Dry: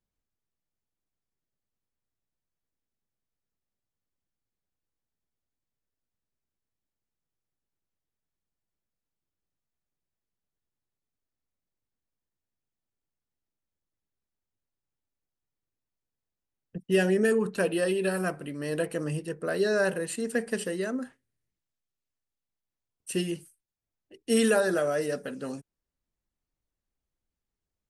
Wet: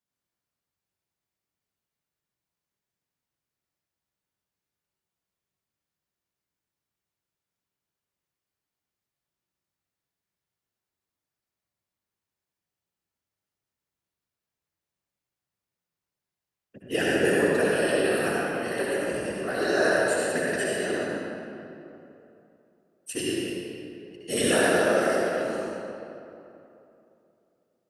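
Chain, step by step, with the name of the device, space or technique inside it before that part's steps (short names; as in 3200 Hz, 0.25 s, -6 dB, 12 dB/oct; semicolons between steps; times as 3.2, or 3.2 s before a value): whispering ghost (whisperiser; HPF 590 Hz 6 dB/oct; reverb RT60 2.9 s, pre-delay 60 ms, DRR -6 dB)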